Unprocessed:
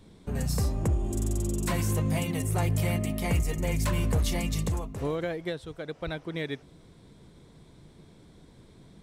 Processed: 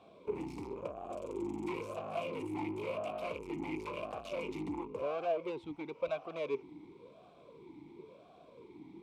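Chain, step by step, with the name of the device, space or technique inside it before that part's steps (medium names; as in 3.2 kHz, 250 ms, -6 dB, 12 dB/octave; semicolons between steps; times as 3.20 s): 5.65–6.18 s: peaking EQ 390 Hz -9 dB 0.58 oct; talk box (valve stage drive 38 dB, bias 0.5; talking filter a-u 0.96 Hz); trim +15 dB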